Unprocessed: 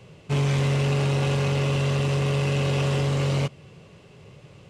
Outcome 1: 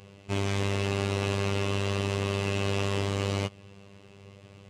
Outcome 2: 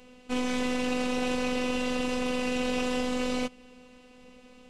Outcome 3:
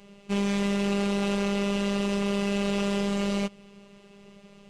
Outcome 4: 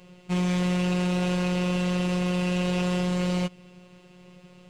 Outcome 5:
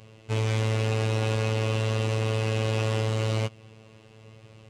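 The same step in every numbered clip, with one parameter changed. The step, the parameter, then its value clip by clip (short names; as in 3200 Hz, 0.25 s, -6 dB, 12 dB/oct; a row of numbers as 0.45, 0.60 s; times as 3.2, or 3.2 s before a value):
robotiser, frequency: 99, 250, 200, 180, 110 Hz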